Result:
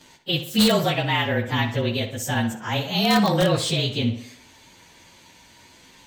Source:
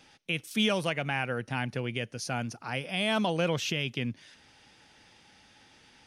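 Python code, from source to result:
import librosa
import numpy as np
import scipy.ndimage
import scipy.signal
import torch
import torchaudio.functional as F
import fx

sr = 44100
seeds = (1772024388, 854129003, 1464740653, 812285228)

p1 = fx.partial_stretch(x, sr, pct=109)
p2 = (np.mod(10.0 ** (20.5 / 20.0) * p1 + 1.0, 2.0) - 1.0) / 10.0 ** (20.5 / 20.0)
p3 = p1 + (p2 * librosa.db_to_amplitude(-6.0))
p4 = fx.echo_tape(p3, sr, ms=61, feedback_pct=54, wet_db=-8, lp_hz=3900.0, drive_db=23.0, wow_cents=33)
y = p4 * librosa.db_to_amplitude(7.5)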